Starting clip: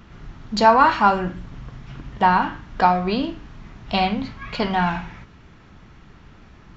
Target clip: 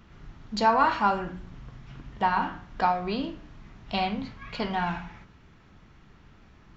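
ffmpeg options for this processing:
ffmpeg -i in.wav -af "bandreject=frequency=60.75:width_type=h:width=4,bandreject=frequency=121.5:width_type=h:width=4,bandreject=frequency=182.25:width_type=h:width=4,bandreject=frequency=243:width_type=h:width=4,bandreject=frequency=303.75:width_type=h:width=4,bandreject=frequency=364.5:width_type=h:width=4,bandreject=frequency=425.25:width_type=h:width=4,bandreject=frequency=486:width_type=h:width=4,bandreject=frequency=546.75:width_type=h:width=4,bandreject=frequency=607.5:width_type=h:width=4,bandreject=frequency=668.25:width_type=h:width=4,bandreject=frequency=729:width_type=h:width=4,bandreject=frequency=789.75:width_type=h:width=4,bandreject=frequency=850.5:width_type=h:width=4,bandreject=frequency=911.25:width_type=h:width=4,bandreject=frequency=972:width_type=h:width=4,bandreject=frequency=1032.75:width_type=h:width=4,bandreject=frequency=1093.5:width_type=h:width=4,bandreject=frequency=1154.25:width_type=h:width=4,bandreject=frequency=1215:width_type=h:width=4,bandreject=frequency=1275.75:width_type=h:width=4,bandreject=frequency=1336.5:width_type=h:width=4,bandreject=frequency=1397.25:width_type=h:width=4,bandreject=frequency=1458:width_type=h:width=4,bandreject=frequency=1518.75:width_type=h:width=4,bandreject=frequency=1579.5:width_type=h:width=4,bandreject=frequency=1640.25:width_type=h:width=4,bandreject=frequency=1701:width_type=h:width=4,bandreject=frequency=1761.75:width_type=h:width=4,volume=-7dB" out.wav

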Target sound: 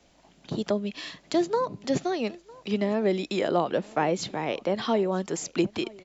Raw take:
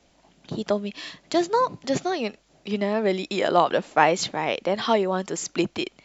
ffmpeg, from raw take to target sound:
ffmpeg -i in.wav -filter_complex "[0:a]acrossover=split=500[link_01][link_02];[link_02]acompressor=threshold=-35dB:ratio=2[link_03];[link_01][link_03]amix=inputs=2:normalize=0,aecho=1:1:954:0.0708" out.wav

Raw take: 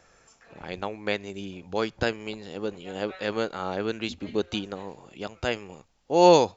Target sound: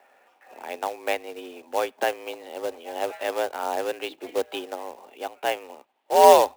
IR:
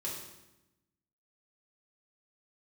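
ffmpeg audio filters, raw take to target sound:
-af "highpass=frequency=210:width=0.5412,highpass=frequency=210:width=1.3066,equalizer=frequency=230:width_type=q:width=4:gain=-8,equalizer=frequency=710:width_type=q:width=4:gain=8,equalizer=frequency=1300:width_type=q:width=4:gain=-4,lowpass=frequency=3100:width=0.5412,lowpass=frequency=3100:width=1.3066,acrusher=bits=3:mode=log:mix=0:aa=0.000001,afreqshift=71,volume=1dB"

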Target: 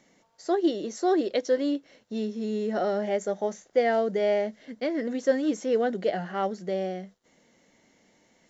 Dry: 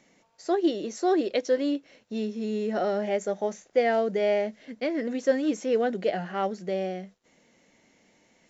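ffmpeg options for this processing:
ffmpeg -i in.wav -af "equalizer=frequency=2500:width_type=o:width=0.22:gain=-7" out.wav

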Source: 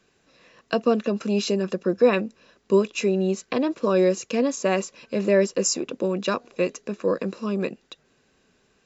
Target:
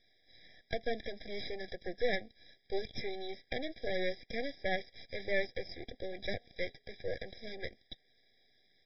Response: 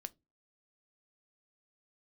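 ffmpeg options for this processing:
-filter_complex "[0:a]aderivative,acrossover=split=2500[link_01][link_02];[link_02]acompressor=threshold=-52dB:ratio=4:attack=1:release=60[link_03];[link_01][link_03]amix=inputs=2:normalize=0,aresample=11025,aeval=exprs='max(val(0),0)':channel_layout=same,aresample=44100,afftfilt=real='re*eq(mod(floor(b*sr/1024/800),2),0)':imag='im*eq(mod(floor(b*sr/1024/800),2),0)':win_size=1024:overlap=0.75,volume=13dB"

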